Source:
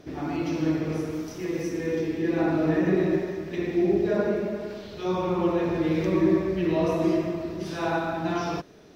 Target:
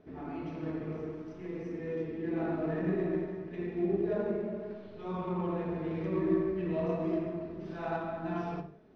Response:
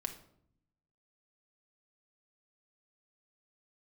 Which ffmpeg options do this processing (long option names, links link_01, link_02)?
-filter_complex "[0:a]tiltshelf=frequency=1400:gain=-3.5[link_01];[1:a]atrim=start_sample=2205,afade=type=out:start_time=0.23:duration=0.01,atrim=end_sample=10584[link_02];[link_01][link_02]afir=irnorm=-1:irlink=0,adynamicsmooth=sensitivity=0.5:basefreq=1500,volume=-5dB"